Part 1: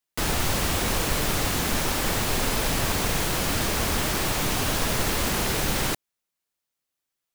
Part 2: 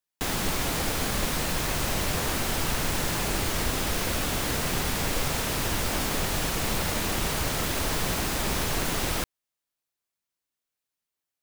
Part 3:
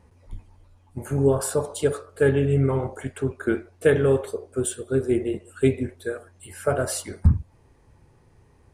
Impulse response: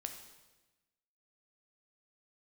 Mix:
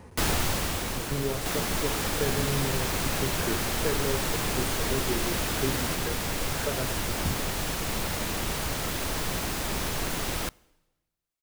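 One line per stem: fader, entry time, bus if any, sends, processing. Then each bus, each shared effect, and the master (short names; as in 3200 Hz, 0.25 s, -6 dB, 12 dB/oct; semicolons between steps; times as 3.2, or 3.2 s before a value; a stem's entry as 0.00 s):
+2.5 dB, 0.00 s, no send, auto duck -11 dB, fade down 1.05 s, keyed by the third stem
-3.5 dB, 1.25 s, send -17 dB, dry
-10.0 dB, 0.00 s, no send, three-band squash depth 70%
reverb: on, RT60 1.1 s, pre-delay 9 ms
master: dry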